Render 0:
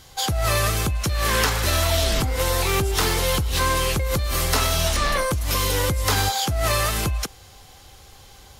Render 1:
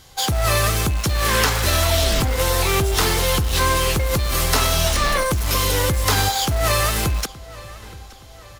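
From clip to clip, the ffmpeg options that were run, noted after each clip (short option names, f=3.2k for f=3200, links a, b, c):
-filter_complex "[0:a]asplit=2[a][b];[b]acrusher=bits=3:mix=0:aa=0.000001,volume=-9.5dB[c];[a][c]amix=inputs=2:normalize=0,asplit=2[d][e];[e]adelay=872,lowpass=f=4.8k:p=1,volume=-19dB,asplit=2[f][g];[g]adelay=872,lowpass=f=4.8k:p=1,volume=0.49,asplit=2[h][i];[i]adelay=872,lowpass=f=4.8k:p=1,volume=0.49,asplit=2[j][k];[k]adelay=872,lowpass=f=4.8k:p=1,volume=0.49[l];[d][f][h][j][l]amix=inputs=5:normalize=0"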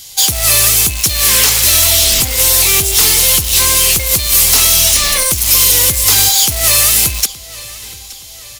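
-af "aexciter=amount=2.3:drive=9.4:freq=2.1k,asoftclip=type=hard:threshold=-6.5dB,highshelf=f=4.7k:g=5.5,volume=-1.5dB"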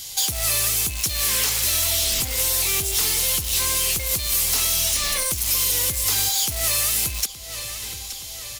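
-af "acompressor=threshold=-26dB:ratio=2,volume=-1.5dB"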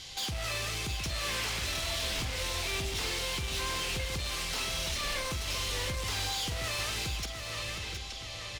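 -af "lowpass=3.4k,volume=30.5dB,asoftclip=hard,volume=-30.5dB,aecho=1:1:43|716:0.266|0.447,volume=-1.5dB"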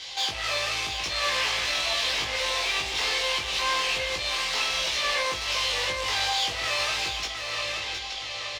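-filter_complex "[0:a]acrossover=split=430 6100:gain=0.126 1 0.178[a][b][c];[a][b][c]amix=inputs=3:normalize=0,bandreject=f=1.4k:w=11,asplit=2[d][e];[e]adelay=19,volume=-2dB[f];[d][f]amix=inputs=2:normalize=0,volume=7dB"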